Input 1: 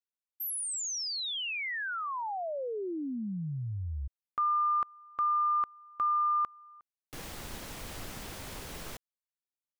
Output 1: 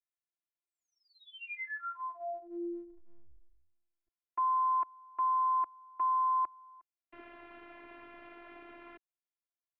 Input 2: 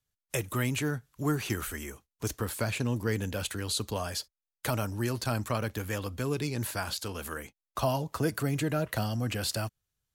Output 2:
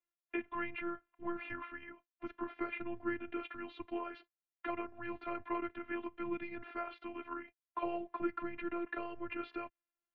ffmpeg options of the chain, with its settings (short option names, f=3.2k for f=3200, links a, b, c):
-af "highpass=f=290:t=q:w=0.5412,highpass=f=290:t=q:w=1.307,lowpass=f=2.7k:t=q:w=0.5176,lowpass=f=2.7k:t=q:w=0.7071,lowpass=f=2.7k:t=q:w=1.932,afreqshift=-160,afftfilt=real='hypot(re,im)*cos(PI*b)':imag='0':win_size=512:overlap=0.75,acontrast=65,volume=-7.5dB"